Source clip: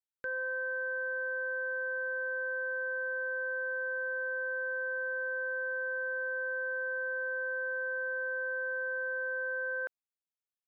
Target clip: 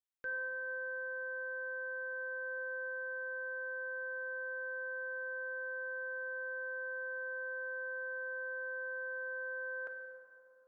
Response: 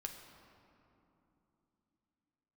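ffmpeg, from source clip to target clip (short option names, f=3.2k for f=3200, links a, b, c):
-filter_complex "[0:a]asettb=1/sr,asplit=3[a][b][c];[a]atrim=end=2.134[d];[b]atrim=start=2.13:end=2.58,asetpts=PTS-STARTPTS,afade=t=in:d=0.004:c=qsin,afade=t=out:st=0.446:d=0.004:c=qsin,lowshelf=f=360:g=4[e];[c]atrim=start=2.576[f];[d][e]acrossfade=d=0.004:c1=hsin:c2=qsin[g];[g][f]acrossfade=d=0.004:c1=qsin:c2=hsin[h];[1:a]atrim=start_sample=2205[i];[h][i]afir=irnorm=-1:irlink=0,volume=-2dB"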